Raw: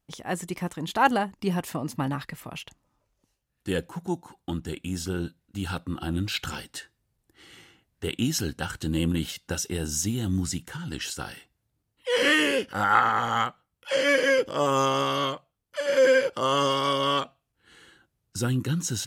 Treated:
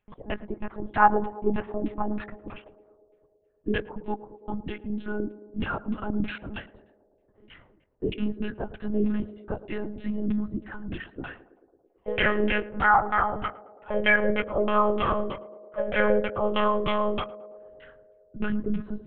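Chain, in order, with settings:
auto-filter low-pass saw down 3.2 Hz 240–2,800 Hz
one-pitch LPC vocoder at 8 kHz 210 Hz
feedback echo with a band-pass in the loop 110 ms, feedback 82%, band-pass 480 Hz, level −15.5 dB
level −1.5 dB

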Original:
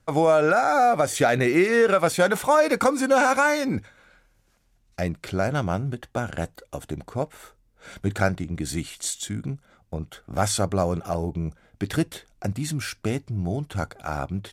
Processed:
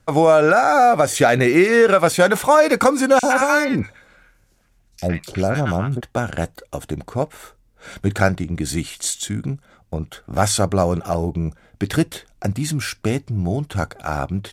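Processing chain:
0:03.19–0:06.01: three-band delay without the direct sound highs, lows, mids 40/110 ms, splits 1,000/3,400 Hz
level +5.5 dB

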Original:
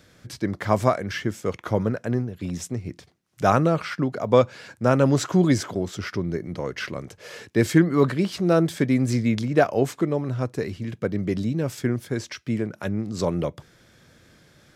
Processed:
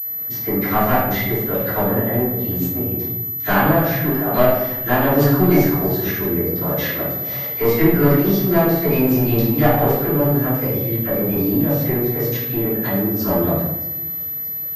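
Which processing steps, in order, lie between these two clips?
parametric band 2,300 Hz −12 dB 0.28 octaves
in parallel at +1 dB: downward compressor, threshold −28 dBFS, peak gain reduction 16 dB
on the sum: harmonic generator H 7 −33 dB, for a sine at −1.5 dBFS
formants moved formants +3 semitones
all-pass dispersion lows, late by 54 ms, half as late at 1,200 Hz
asymmetric clip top −17.5 dBFS
on a send: delay with a high-pass on its return 625 ms, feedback 81%, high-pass 3,300 Hz, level −17 dB
on the sum: rectangular room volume 320 cubic metres, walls mixed, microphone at 3.1 metres
switching amplifier with a slow clock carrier 12,000 Hz
level −5.5 dB

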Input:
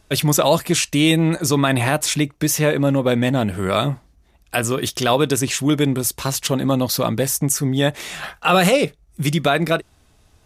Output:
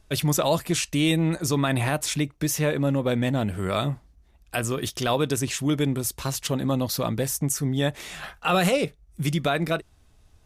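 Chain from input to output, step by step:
low-shelf EQ 79 Hz +9.5 dB
level −7 dB

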